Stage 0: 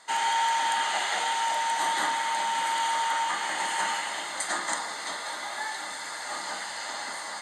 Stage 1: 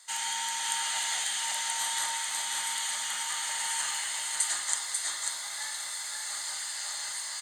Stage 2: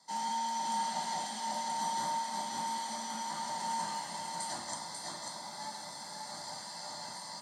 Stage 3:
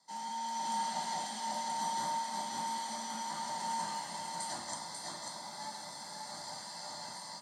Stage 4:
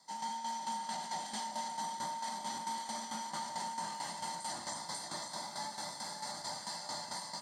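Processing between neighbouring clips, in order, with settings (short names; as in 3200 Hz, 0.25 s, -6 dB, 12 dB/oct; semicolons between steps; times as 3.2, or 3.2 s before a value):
octaver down 2 oct, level +1 dB; pre-emphasis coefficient 0.97; echo 0.543 s -4 dB; gain +4.5 dB
tilt shelf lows +8 dB, about 690 Hz; reverb, pre-delay 3 ms, DRR 2 dB; gain -8.5 dB
AGC gain up to 5 dB; gain -6 dB
limiter -35 dBFS, peak gain reduction 10.5 dB; tremolo saw down 4.5 Hz, depth 65%; gain +6 dB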